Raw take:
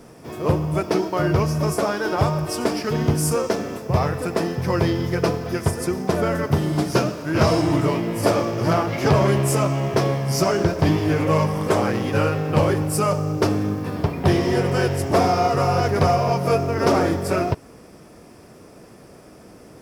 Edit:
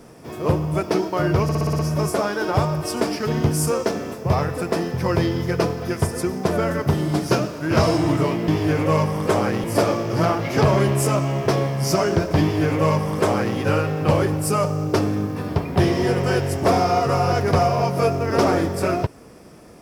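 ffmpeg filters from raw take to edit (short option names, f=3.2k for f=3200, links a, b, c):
-filter_complex "[0:a]asplit=9[a][b][c][d][e][f][g][h][i];[a]atrim=end=1.492[j];[b]atrim=start=1.428:end=1.492[k];[c]atrim=start=1.428:end=1.492[l];[d]atrim=start=1.428:end=1.492[m];[e]atrim=start=1.428:end=1.492[n];[f]atrim=start=1.428:end=1.492[o];[g]atrim=start=1.428:end=8.122[p];[h]atrim=start=10.888:end=12.052[q];[i]atrim=start=8.118[r];[j][k]acrossfade=d=0.004:c1=hsin:c2=hsin[s];[s][l]acrossfade=d=0.004:c1=hsin:c2=hsin[t];[t][m]acrossfade=d=0.004:c1=hsin:c2=hsin[u];[u][n]acrossfade=d=0.004:c1=hsin:c2=hsin[v];[v][o]acrossfade=d=0.004:c1=hsin:c2=hsin[w];[w][p]acrossfade=d=0.004:c1=hsin:c2=hsin[x];[x][q]acrossfade=d=0.004:c1=hsin:c2=hsin[y];[y][r]acrossfade=d=0.004:c1=hsin:c2=hsin"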